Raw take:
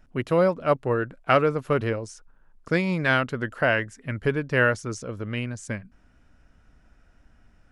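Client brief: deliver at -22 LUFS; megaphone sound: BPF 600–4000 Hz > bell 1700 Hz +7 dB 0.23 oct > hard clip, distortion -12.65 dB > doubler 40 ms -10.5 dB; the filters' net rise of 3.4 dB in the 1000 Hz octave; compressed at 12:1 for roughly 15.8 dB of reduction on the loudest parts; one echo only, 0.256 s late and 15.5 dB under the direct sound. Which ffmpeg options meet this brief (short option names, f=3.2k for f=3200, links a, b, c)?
-filter_complex "[0:a]equalizer=f=1k:t=o:g=5,acompressor=threshold=-28dB:ratio=12,highpass=600,lowpass=4k,equalizer=f=1.7k:t=o:w=0.23:g=7,aecho=1:1:256:0.168,asoftclip=type=hard:threshold=-26.5dB,asplit=2[a][b];[b]adelay=40,volume=-10.5dB[c];[a][c]amix=inputs=2:normalize=0,volume=14.5dB"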